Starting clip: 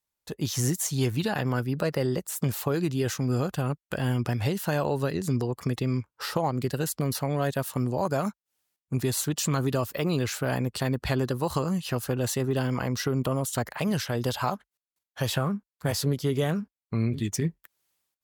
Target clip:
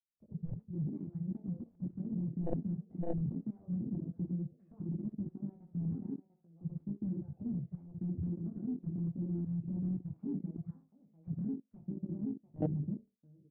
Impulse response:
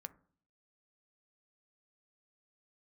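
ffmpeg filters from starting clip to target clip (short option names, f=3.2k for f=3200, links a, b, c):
-filter_complex "[0:a]highshelf=f=5.2k:g=7,aecho=1:1:936:0.168,asplit=2[a][b];[1:a]atrim=start_sample=2205,asetrate=79380,aresample=44100,adelay=81[c];[b][c]afir=irnorm=-1:irlink=0,volume=2dB[d];[a][d]amix=inputs=2:normalize=0,acrossover=split=160[e][f];[f]acompressor=threshold=-43dB:ratio=2[g];[e][g]amix=inputs=2:normalize=0,aexciter=amount=3.7:drive=3.8:freq=10k,asetrate=59535,aresample=44100,flanger=delay=18.5:depth=5.3:speed=0.17,aeval=exprs='0.119*(cos(1*acos(clip(val(0)/0.119,-1,1)))-cos(1*PI/2))+0.0596*(cos(3*acos(clip(val(0)/0.119,-1,1)))-cos(3*PI/2))':c=same,afwtdn=0.0282,adynamicsmooth=sensitivity=4.5:basefreq=680,tiltshelf=f=720:g=9,volume=1dB"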